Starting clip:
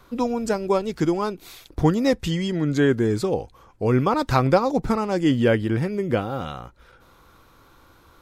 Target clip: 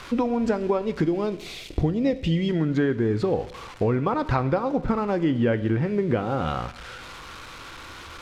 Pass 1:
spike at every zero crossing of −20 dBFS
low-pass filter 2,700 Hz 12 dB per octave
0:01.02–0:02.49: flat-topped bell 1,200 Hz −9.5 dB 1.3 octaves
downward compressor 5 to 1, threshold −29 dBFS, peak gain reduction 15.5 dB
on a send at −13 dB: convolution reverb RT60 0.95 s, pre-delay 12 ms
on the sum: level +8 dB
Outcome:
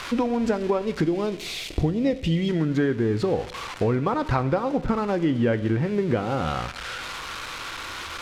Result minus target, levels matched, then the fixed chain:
spike at every zero crossing: distortion +8 dB
spike at every zero crossing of −28 dBFS
low-pass filter 2,700 Hz 12 dB per octave
0:01.02–0:02.49: flat-topped bell 1,200 Hz −9.5 dB 1.3 octaves
downward compressor 5 to 1, threshold −29 dBFS, peak gain reduction 15.5 dB
on a send at −13 dB: convolution reverb RT60 0.95 s, pre-delay 12 ms
on the sum: level +8 dB

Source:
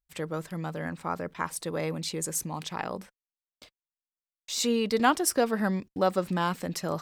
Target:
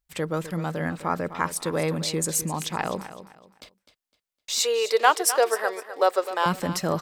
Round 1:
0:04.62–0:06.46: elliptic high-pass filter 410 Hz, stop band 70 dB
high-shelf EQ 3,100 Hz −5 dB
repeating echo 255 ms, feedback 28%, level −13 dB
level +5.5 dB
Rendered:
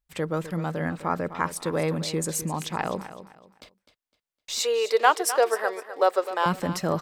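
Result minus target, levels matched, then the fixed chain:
8,000 Hz band −3.5 dB
0:04.62–0:06.46: elliptic high-pass filter 410 Hz, stop band 70 dB
repeating echo 255 ms, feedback 28%, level −13 dB
level +5.5 dB

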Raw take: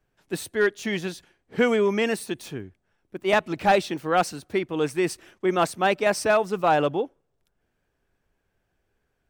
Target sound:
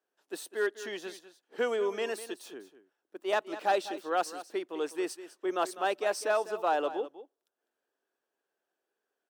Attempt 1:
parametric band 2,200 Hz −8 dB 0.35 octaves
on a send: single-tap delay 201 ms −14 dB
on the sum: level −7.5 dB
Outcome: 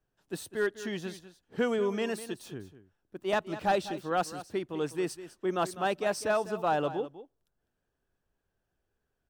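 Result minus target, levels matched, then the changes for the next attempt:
250 Hz band +4.5 dB
add first: high-pass filter 320 Hz 24 dB per octave

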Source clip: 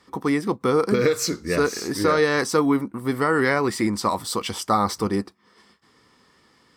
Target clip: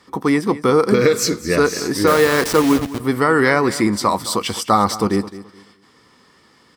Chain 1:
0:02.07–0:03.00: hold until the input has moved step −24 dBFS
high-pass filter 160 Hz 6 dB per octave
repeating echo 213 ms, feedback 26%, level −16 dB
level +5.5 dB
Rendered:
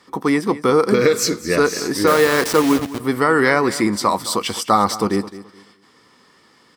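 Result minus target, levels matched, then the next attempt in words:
125 Hz band −2.5 dB
0:02.07–0:03.00: hold until the input has moved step −24 dBFS
high-pass filter 46 Hz 6 dB per octave
repeating echo 213 ms, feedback 26%, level −16 dB
level +5.5 dB

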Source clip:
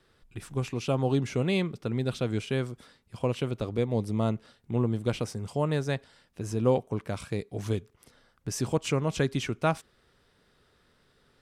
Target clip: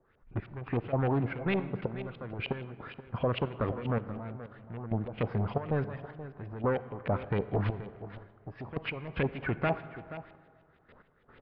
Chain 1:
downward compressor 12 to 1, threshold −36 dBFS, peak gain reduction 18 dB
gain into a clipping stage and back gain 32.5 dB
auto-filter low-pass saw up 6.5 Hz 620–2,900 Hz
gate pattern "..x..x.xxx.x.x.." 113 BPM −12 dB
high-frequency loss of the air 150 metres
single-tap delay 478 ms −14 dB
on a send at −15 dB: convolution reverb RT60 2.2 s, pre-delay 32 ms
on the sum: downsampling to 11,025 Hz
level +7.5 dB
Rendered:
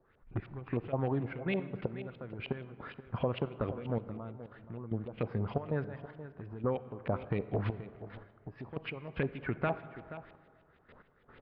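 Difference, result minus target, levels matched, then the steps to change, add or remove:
downward compressor: peak gain reduction +6.5 dB
change: downward compressor 12 to 1, threshold −29 dBFS, peak gain reduction 11.5 dB

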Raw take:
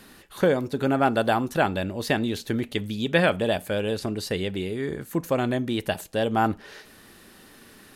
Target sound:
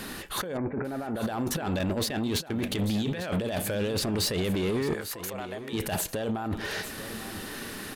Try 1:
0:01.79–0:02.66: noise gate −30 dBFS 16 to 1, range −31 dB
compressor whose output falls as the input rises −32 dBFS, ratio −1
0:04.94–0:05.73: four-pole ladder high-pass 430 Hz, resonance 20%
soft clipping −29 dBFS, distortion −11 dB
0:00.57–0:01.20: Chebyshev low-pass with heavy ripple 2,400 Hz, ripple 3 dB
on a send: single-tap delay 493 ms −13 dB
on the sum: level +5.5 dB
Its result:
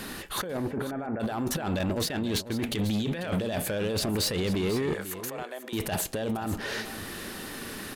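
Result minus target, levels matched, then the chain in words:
echo 354 ms early
0:01.79–0:02.66: noise gate −30 dBFS 16 to 1, range −31 dB
compressor whose output falls as the input rises −32 dBFS, ratio −1
0:04.94–0:05.73: four-pole ladder high-pass 430 Hz, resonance 20%
soft clipping −29 dBFS, distortion −11 dB
0:00.57–0:01.20: Chebyshev low-pass with heavy ripple 2,400 Hz, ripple 3 dB
on a send: single-tap delay 847 ms −13 dB
on the sum: level +5.5 dB

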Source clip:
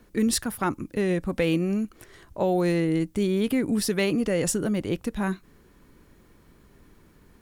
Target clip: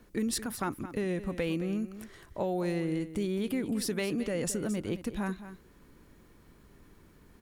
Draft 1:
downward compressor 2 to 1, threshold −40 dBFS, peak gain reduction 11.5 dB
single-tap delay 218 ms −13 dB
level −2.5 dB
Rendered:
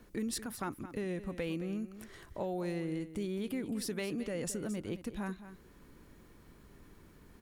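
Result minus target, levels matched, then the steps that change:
downward compressor: peak gain reduction +5.5 dB
change: downward compressor 2 to 1, threshold −29.5 dBFS, peak gain reduction 6 dB

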